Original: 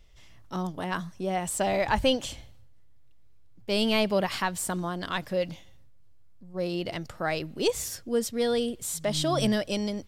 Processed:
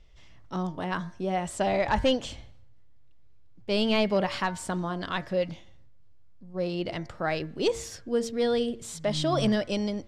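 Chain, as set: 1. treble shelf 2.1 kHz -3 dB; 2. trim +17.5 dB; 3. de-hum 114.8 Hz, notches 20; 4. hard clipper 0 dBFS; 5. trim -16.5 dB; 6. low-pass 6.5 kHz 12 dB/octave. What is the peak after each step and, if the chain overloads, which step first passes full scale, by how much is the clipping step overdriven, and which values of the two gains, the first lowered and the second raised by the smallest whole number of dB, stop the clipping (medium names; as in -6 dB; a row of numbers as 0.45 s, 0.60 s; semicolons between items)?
-12.5 dBFS, +5.0 dBFS, +5.5 dBFS, 0.0 dBFS, -16.5 dBFS, -16.0 dBFS; step 2, 5.5 dB; step 2 +11.5 dB, step 5 -10.5 dB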